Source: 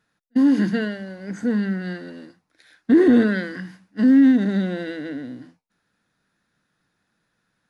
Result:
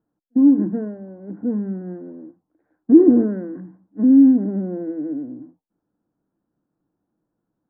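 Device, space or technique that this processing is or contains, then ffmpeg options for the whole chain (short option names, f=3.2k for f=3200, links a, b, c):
under water: -af "lowpass=f=960:w=0.5412,lowpass=f=960:w=1.3066,equalizer=f=310:t=o:w=0.52:g=10.5,volume=-4dB"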